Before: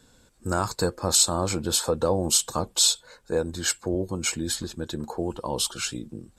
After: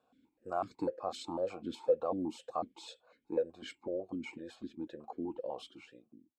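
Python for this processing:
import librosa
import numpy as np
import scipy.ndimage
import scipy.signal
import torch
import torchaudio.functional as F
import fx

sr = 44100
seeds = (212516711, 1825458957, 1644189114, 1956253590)

y = fx.fade_out_tail(x, sr, length_s=0.87)
y = fx.high_shelf(y, sr, hz=2100.0, db=-9.0)
y = fx.vowel_held(y, sr, hz=8.0)
y = y * librosa.db_to_amplitude(1.5)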